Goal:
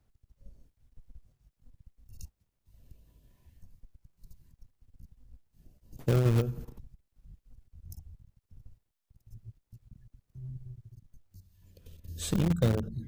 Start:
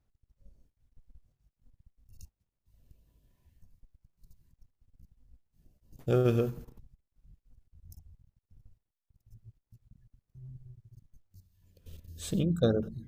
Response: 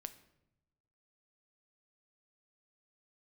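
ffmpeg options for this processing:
-filter_complex "[0:a]acrossover=split=140[link_01][link_02];[link_02]acompressor=threshold=-38dB:ratio=5[link_03];[link_01][link_03]amix=inputs=2:normalize=0,asplit=2[link_04][link_05];[link_05]acrusher=bits=4:mix=0:aa=0.000001,volume=-10dB[link_06];[link_04][link_06]amix=inputs=2:normalize=0,asettb=1/sr,asplit=3[link_07][link_08][link_09];[link_07]atrim=end=10.874[link_10];[link_08]atrim=start=10.87:end=12.04,asetpts=PTS-STARTPTS,afade=type=in:duration=0.004:curve=qsin,afade=type=out:start_time=1.166:duration=0.004:curve=qsin,acompressor=threshold=-53dB:ratio=5[link_11];[link_09]atrim=start=12.036[link_12];[link_10][link_11]acrossfade=duration=0.004:curve1=hsin:curve2=qsin[link_13];[link_13][link_12]acrossfade=duration=0.004:curve1=qsin:curve2=hsin,volume=5.5dB"

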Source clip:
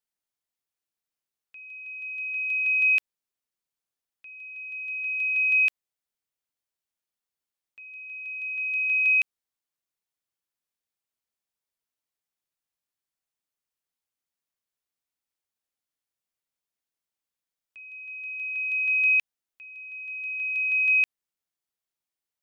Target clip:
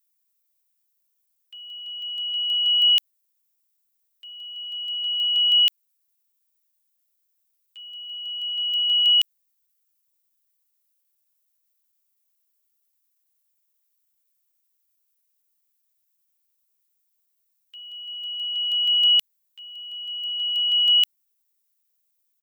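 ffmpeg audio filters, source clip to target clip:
ffmpeg -i in.wav -af "aemphasis=mode=production:type=riaa,asetrate=50951,aresample=44100,atempo=0.865537" out.wav

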